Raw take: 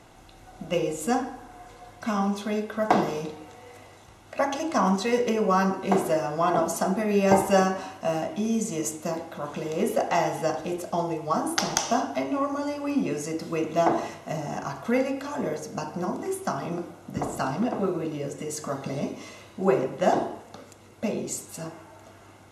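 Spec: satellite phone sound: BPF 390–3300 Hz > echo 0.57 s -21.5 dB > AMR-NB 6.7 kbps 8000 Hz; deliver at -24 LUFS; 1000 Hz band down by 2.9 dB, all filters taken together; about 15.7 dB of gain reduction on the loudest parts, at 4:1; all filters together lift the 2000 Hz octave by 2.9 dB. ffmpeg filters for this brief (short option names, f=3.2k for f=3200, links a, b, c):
-af "equalizer=f=1k:t=o:g=-5,equalizer=f=2k:t=o:g=6,acompressor=threshold=-36dB:ratio=4,highpass=390,lowpass=3.3k,aecho=1:1:570:0.0841,volume=19.5dB" -ar 8000 -c:a libopencore_amrnb -b:a 6700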